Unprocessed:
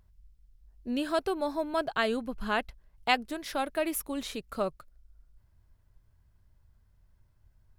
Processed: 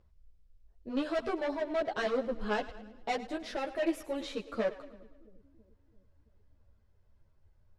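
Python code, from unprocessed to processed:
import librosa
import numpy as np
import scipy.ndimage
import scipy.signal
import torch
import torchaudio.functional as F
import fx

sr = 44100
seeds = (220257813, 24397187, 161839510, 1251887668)

p1 = fx.peak_eq(x, sr, hz=520.0, db=9.0, octaves=0.8)
p2 = np.clip(10.0 ** (24.5 / 20.0) * p1, -1.0, 1.0) / 10.0 ** (24.5 / 20.0)
p3 = scipy.signal.sosfilt(scipy.signal.butter(2, 5500.0, 'lowpass', fs=sr, output='sos'), p2)
p4 = p3 + fx.echo_split(p3, sr, split_hz=400.0, low_ms=335, high_ms=104, feedback_pct=52, wet_db=-15.5, dry=0)
y = fx.ensemble(p4, sr)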